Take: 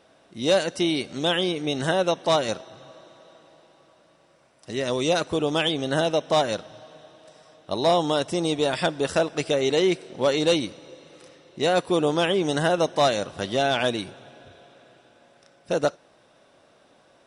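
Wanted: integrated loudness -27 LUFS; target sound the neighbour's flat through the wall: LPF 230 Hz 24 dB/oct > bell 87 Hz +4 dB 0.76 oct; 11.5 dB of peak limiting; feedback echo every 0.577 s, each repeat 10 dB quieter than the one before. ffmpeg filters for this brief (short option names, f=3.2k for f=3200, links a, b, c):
-af "alimiter=limit=-23.5dB:level=0:latency=1,lowpass=f=230:w=0.5412,lowpass=f=230:w=1.3066,equalizer=f=87:t=o:w=0.76:g=4,aecho=1:1:577|1154|1731|2308:0.316|0.101|0.0324|0.0104,volume=16.5dB"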